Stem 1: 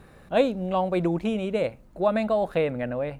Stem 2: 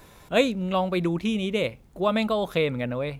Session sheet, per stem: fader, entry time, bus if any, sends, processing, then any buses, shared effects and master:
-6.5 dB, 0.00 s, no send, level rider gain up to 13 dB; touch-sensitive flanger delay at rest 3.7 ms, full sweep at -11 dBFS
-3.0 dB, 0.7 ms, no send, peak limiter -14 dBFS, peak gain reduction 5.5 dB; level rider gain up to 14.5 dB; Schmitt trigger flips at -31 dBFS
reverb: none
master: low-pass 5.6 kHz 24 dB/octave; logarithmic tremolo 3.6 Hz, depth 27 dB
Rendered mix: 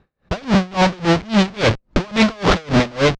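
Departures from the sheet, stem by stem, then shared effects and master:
stem 1: missing touch-sensitive flanger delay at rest 3.7 ms, full sweep at -11 dBFS; stem 2 -3.0 dB -> +5.0 dB

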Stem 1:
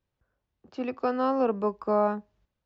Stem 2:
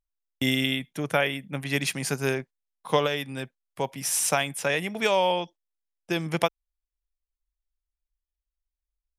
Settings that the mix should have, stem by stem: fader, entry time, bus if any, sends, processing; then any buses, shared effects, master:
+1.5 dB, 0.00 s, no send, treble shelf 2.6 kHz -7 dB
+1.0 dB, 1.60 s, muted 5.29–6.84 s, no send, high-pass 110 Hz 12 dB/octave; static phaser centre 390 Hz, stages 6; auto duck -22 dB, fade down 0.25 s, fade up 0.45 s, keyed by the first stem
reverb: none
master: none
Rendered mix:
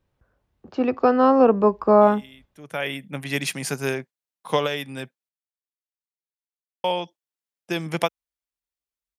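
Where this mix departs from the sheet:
stem 1 +1.5 dB -> +10.0 dB; stem 2: missing static phaser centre 390 Hz, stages 6

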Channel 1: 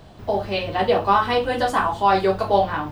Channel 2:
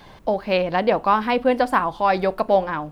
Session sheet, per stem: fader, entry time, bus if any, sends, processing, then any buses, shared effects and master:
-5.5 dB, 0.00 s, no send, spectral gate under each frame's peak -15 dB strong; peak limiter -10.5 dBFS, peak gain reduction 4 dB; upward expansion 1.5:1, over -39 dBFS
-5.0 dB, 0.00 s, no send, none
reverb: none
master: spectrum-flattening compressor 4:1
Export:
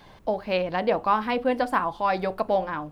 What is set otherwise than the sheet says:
stem 1 -5.5 dB -> -12.5 dB; master: missing spectrum-flattening compressor 4:1

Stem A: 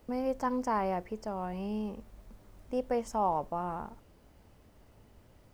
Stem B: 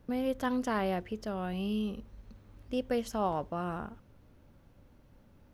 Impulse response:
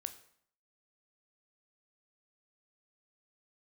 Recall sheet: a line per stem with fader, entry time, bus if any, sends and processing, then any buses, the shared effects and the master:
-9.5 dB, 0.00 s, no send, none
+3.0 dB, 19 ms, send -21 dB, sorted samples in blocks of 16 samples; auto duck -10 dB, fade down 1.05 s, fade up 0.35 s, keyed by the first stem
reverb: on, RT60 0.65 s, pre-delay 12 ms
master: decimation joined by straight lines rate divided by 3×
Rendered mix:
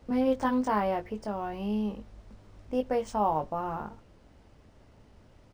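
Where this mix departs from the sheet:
stem A -9.5 dB -> +2.0 dB; stem B: missing sorted samples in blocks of 16 samples

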